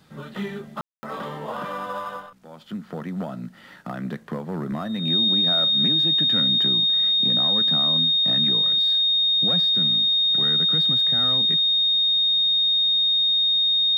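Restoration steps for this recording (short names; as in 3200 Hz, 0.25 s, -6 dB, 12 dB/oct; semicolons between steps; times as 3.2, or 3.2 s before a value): notch 3700 Hz, Q 30; room tone fill 0.81–1.03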